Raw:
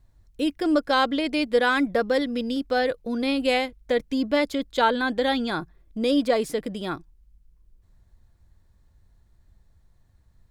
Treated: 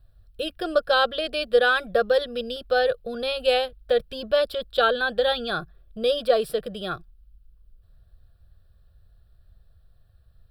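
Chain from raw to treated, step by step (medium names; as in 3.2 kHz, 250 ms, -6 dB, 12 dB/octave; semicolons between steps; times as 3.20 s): static phaser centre 1.4 kHz, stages 8; trim +3.5 dB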